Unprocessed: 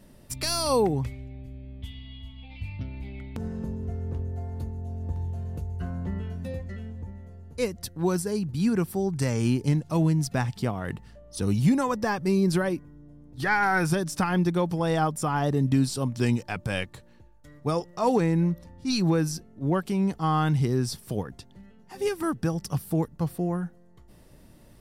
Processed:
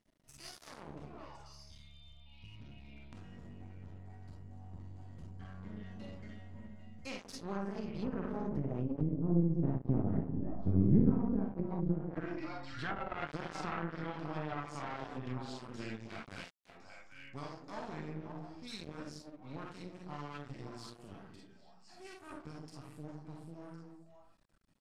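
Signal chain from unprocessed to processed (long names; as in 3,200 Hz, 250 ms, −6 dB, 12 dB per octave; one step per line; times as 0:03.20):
source passing by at 0:10.32, 24 m/s, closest 8.6 metres
low-pass filter 7,800 Hz 12 dB per octave
parametric band 480 Hz −12 dB 0.76 octaves
mains-hum notches 60/120/180/240 Hz
on a send: echo through a band-pass that steps 265 ms, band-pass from 310 Hz, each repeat 1.4 octaves, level −5 dB
on the sum: comb and all-pass reverb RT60 0.45 s, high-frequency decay 0.45×, pre-delay 5 ms, DRR −3 dB
half-wave rectification
treble cut that deepens with the level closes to 320 Hz, closed at −35.5 dBFS
in parallel at −1 dB: downward compressor, threshold −53 dBFS, peak gain reduction 25 dB
on the sum: low-shelf EQ 70 Hz −7.5 dB
level +7.5 dB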